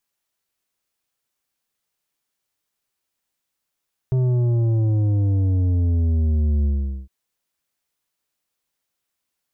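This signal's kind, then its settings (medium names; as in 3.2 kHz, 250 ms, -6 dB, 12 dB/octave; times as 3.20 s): sub drop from 130 Hz, over 2.96 s, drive 8.5 dB, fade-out 0.43 s, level -17 dB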